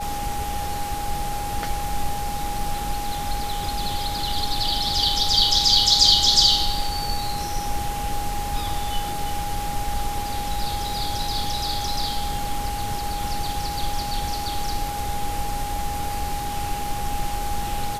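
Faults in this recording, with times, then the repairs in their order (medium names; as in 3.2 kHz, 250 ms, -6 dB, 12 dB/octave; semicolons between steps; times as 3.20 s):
whine 820 Hz -28 dBFS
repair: band-stop 820 Hz, Q 30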